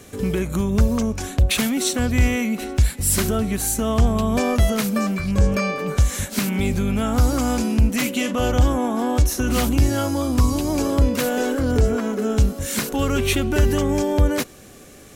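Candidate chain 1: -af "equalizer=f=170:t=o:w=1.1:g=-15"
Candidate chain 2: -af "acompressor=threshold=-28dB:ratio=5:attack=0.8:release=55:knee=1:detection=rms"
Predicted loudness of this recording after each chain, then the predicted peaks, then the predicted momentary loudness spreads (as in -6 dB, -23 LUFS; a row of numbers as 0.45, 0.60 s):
-23.5, -32.0 LUFS; -6.5, -18.0 dBFS; 5, 1 LU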